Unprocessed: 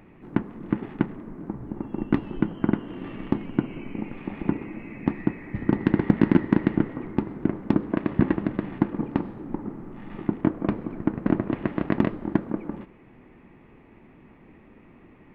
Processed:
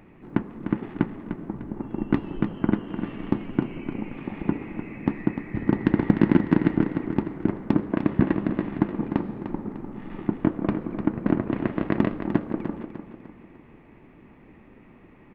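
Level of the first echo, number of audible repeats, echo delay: −9.0 dB, 4, 300 ms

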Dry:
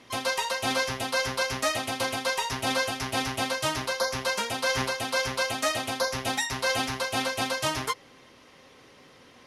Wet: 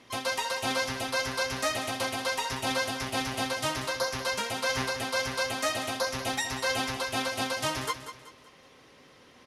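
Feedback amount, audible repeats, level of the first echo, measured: 38%, 3, −11.0 dB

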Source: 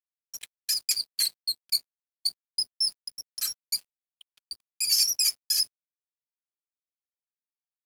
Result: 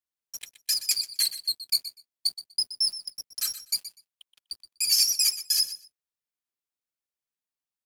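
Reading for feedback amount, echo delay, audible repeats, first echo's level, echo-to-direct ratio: 16%, 123 ms, 2, −13.5 dB, −13.5 dB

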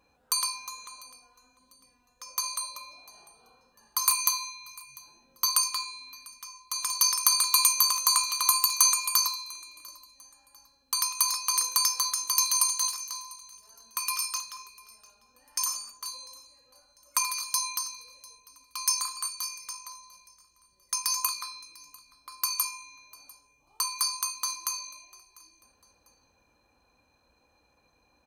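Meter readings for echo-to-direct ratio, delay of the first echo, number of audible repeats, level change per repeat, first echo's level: −22.5 dB, 697 ms, 2, −9.0 dB, −23.0 dB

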